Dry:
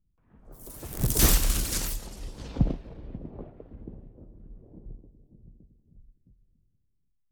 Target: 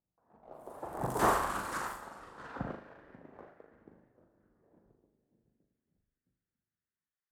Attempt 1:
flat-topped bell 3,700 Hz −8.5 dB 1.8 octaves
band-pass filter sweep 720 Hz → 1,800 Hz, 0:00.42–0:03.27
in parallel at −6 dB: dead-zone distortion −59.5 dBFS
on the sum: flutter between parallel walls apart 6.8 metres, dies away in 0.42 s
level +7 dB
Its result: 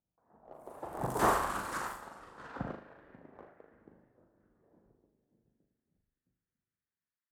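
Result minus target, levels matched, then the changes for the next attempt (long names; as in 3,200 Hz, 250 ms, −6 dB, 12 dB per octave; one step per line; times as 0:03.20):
dead-zone distortion: distortion +7 dB
change: dead-zone distortion −68.5 dBFS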